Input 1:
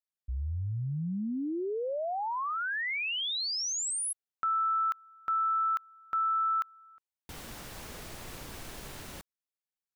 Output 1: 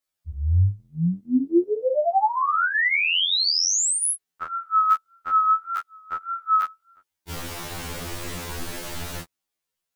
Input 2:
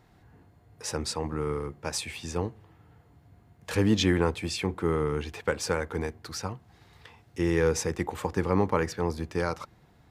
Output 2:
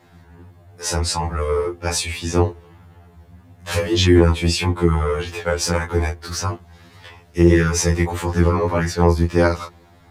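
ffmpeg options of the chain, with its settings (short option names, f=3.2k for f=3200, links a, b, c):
-af "flanger=delay=19.5:depth=5.9:speed=1.7,alimiter=level_in=20.5dB:limit=-1dB:release=50:level=0:latency=1,afftfilt=real='re*2*eq(mod(b,4),0)':imag='im*2*eq(mod(b,4),0)':win_size=2048:overlap=0.75,volume=-4.5dB"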